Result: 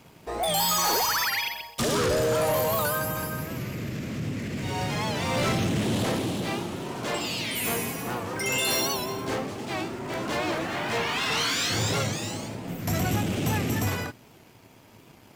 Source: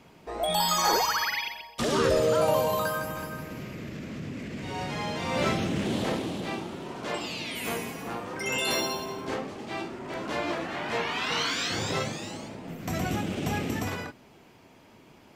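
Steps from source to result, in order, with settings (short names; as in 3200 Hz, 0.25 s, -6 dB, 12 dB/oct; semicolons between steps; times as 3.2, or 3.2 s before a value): sample leveller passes 1; high shelf 7900 Hz +11 dB; soft clip -20.5 dBFS, distortion -14 dB; bell 110 Hz +7 dB 0.65 oct; record warp 78 rpm, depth 100 cents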